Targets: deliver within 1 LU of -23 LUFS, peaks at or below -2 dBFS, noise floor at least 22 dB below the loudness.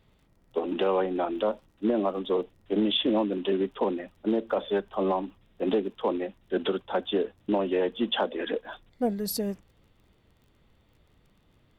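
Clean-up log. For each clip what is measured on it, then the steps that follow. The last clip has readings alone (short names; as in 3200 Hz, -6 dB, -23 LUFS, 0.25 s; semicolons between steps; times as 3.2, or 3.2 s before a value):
ticks 30/s; loudness -28.5 LUFS; peak -15.0 dBFS; loudness target -23.0 LUFS
-> de-click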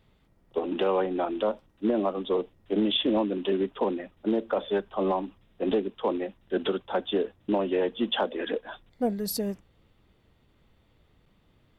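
ticks 0/s; loudness -28.5 LUFS; peak -15.0 dBFS; loudness target -23.0 LUFS
-> gain +5.5 dB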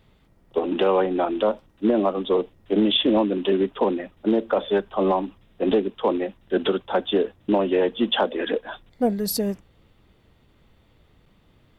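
loudness -23.0 LUFS; peak -9.5 dBFS; noise floor -60 dBFS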